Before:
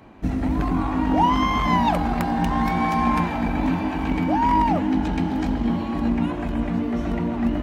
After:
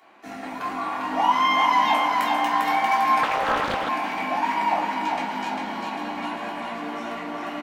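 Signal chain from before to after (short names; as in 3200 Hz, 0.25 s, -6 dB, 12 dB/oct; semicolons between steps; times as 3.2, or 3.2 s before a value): HPF 780 Hz 12 dB/oct; on a send: feedback echo 0.399 s, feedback 59%, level -4 dB; on the sum: shoebox room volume 310 m³, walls furnished, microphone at 3.3 m; 3.23–3.89 Doppler distortion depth 0.76 ms; gain -3.5 dB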